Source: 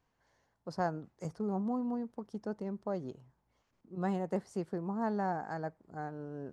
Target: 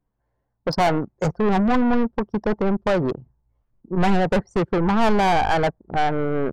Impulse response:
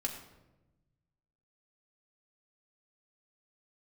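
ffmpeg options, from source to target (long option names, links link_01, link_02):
-filter_complex "[0:a]anlmdn=0.01,lowshelf=frequency=200:gain=5,asplit=2[link_01][link_02];[link_02]highpass=frequency=720:poles=1,volume=29dB,asoftclip=type=tanh:threshold=-18.5dB[link_03];[link_01][link_03]amix=inputs=2:normalize=0,lowpass=frequency=4200:poles=1,volume=-6dB,asubboost=boost=3:cutoff=130,volume=8dB"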